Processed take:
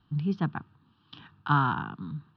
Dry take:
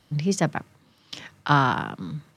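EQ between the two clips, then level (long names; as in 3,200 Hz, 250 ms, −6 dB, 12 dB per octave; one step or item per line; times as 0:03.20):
low-pass filter 4,600 Hz 12 dB per octave
high-frequency loss of the air 280 metres
phaser with its sweep stopped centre 2,100 Hz, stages 6
−2.0 dB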